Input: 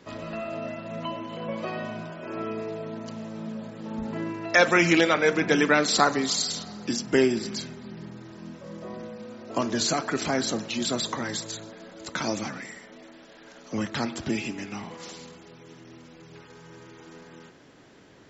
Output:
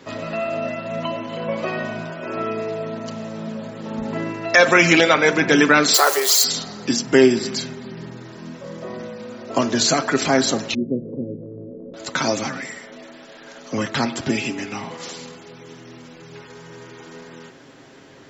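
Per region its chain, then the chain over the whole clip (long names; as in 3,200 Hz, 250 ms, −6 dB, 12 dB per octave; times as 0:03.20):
0:05.94–0:06.44: spike at every zero crossing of −21 dBFS + Chebyshev high-pass filter 370 Hz, order 5 + notch filter 3,700 Hz, Q 16
0:10.74–0:11.94: Chebyshev low-pass filter 510 Hz, order 5 + upward compression, threshold −34 dBFS
whole clip: low-shelf EQ 130 Hz −6 dB; comb filter 7.5 ms, depth 37%; boost into a limiter +8.5 dB; level −1 dB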